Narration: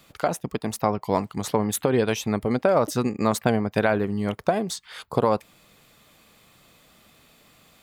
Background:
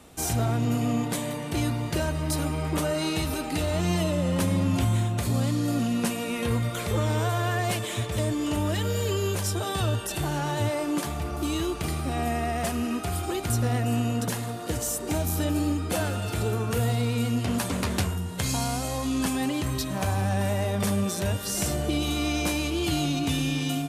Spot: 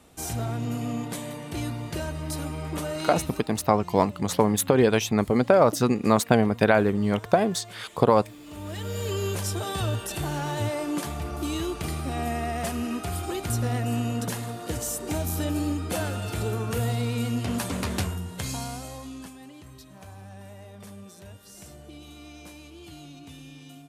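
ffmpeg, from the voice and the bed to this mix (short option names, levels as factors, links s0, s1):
-filter_complex "[0:a]adelay=2850,volume=1.26[s0];[1:a]volume=4.22,afade=t=out:st=3.07:d=0.46:silence=0.199526,afade=t=in:st=8.45:d=0.75:silence=0.141254,afade=t=out:st=18.02:d=1.33:silence=0.141254[s1];[s0][s1]amix=inputs=2:normalize=0"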